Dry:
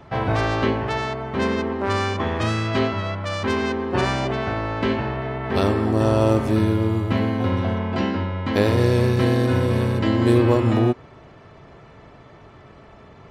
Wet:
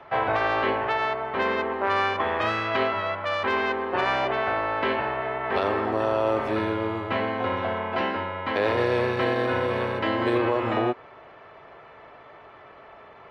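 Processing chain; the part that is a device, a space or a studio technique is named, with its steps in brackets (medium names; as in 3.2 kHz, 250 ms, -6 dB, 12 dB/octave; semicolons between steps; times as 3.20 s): DJ mixer with the lows and highs turned down (three-band isolator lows -18 dB, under 440 Hz, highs -21 dB, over 3.4 kHz; peak limiter -16.5 dBFS, peak gain reduction 6 dB); trim +3 dB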